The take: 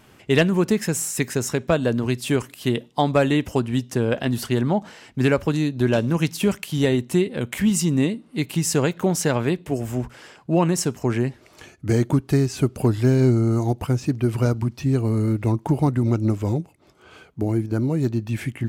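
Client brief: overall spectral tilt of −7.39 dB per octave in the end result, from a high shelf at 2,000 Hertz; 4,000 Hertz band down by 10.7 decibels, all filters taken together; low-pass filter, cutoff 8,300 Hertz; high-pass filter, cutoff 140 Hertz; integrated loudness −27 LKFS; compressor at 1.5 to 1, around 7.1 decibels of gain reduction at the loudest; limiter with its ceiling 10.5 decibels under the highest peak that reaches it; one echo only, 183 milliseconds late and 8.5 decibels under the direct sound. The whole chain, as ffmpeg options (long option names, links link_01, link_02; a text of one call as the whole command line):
ffmpeg -i in.wav -af "highpass=140,lowpass=8300,highshelf=frequency=2000:gain=-7,equalizer=frequency=4000:width_type=o:gain=-7.5,acompressor=threshold=-35dB:ratio=1.5,alimiter=limit=-23dB:level=0:latency=1,aecho=1:1:183:0.376,volume=6dB" out.wav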